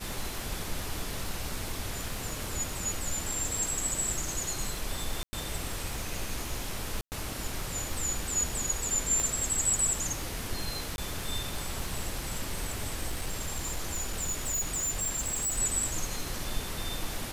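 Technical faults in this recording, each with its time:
surface crackle 140 per second −38 dBFS
0:05.23–0:05.33: drop-out 100 ms
0:07.01–0:07.12: drop-out 109 ms
0:09.20: click
0:10.96–0:10.98: drop-out 21 ms
0:13.07–0:15.59: clipping −27.5 dBFS

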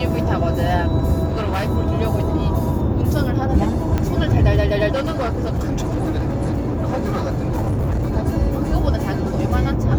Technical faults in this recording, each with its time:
0:01.27–0:01.71: clipping −17.5 dBFS
0:03.98: click −9 dBFS
0:04.94–0:08.16: clipping −17 dBFS

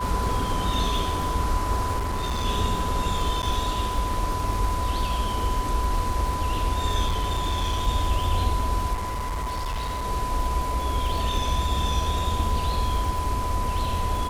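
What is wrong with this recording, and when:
surface crackle 130 per second −32 dBFS
whistle 1,000 Hz −28 dBFS
0:01.98–0:02.46: clipping −23.5 dBFS
0:03.42–0:03.43: drop-out 9 ms
0:07.06–0:07.88: clipping −20.5 dBFS
0:08.93–0:10.05: clipping −25.5 dBFS

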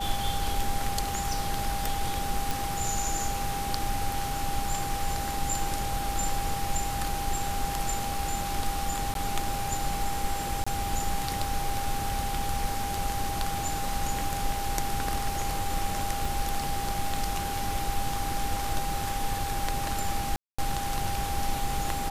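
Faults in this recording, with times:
whistle 800 Hz −32 dBFS
0:02.51: click
0:09.14–0:09.15: drop-out 12 ms
0:10.64–0:10.66: drop-out 25 ms
0:16.25: drop-out 3.3 ms
0:20.36–0:20.59: drop-out 225 ms

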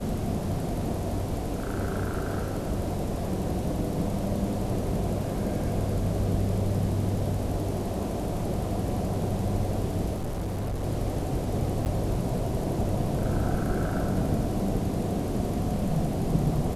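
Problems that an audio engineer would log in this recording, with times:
0:10.13–0:10.84: clipping −27 dBFS
0:11.85–0:11.86: drop-out 9.6 ms

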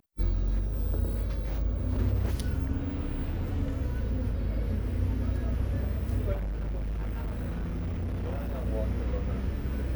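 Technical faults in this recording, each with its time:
0:06.33–0:08.67: clipping −29 dBFS

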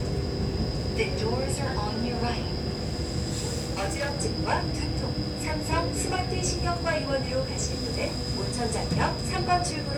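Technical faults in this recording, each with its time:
0:03.55–0:04.13: clipping −24 dBFS

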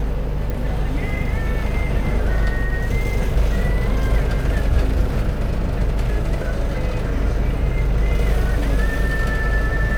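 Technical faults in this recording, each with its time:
0:00.50: click

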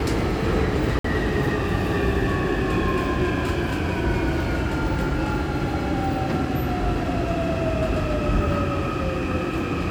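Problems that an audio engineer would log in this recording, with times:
0:00.99–0:01.04: drop-out 54 ms

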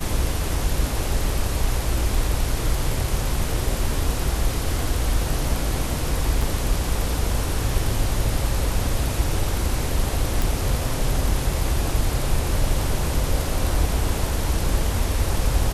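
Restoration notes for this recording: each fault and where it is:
0:06.42: drop-out 4.2 ms
0:10.42: click

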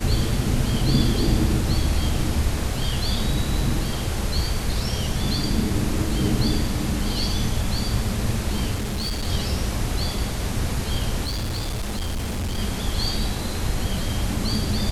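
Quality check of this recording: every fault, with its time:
0:08.74–0:09.28: clipping −22.5 dBFS
0:11.25–0:12.59: clipping −23 dBFS

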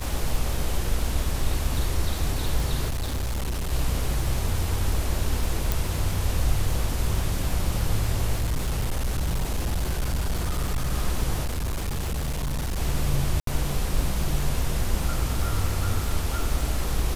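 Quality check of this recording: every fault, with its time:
surface crackle 100 per second −29 dBFS
0:02.90–0:03.73: clipping −24 dBFS
0:05.72: click
0:08.38–0:10.93: clipping −21 dBFS
0:11.44–0:12.78: clipping −24 dBFS
0:13.40–0:13.47: drop-out 73 ms

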